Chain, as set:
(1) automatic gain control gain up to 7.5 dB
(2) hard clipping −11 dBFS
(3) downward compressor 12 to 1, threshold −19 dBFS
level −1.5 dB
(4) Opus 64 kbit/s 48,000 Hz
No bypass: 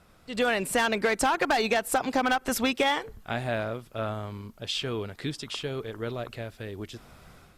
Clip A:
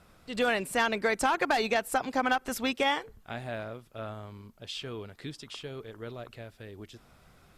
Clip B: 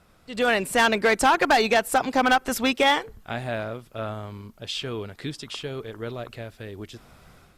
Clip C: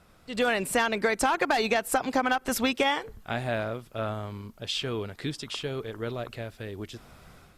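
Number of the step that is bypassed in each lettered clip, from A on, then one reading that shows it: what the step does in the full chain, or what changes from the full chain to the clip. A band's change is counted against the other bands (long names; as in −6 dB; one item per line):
1, change in momentary loudness spread +5 LU
3, change in crest factor −2.0 dB
2, distortion level −16 dB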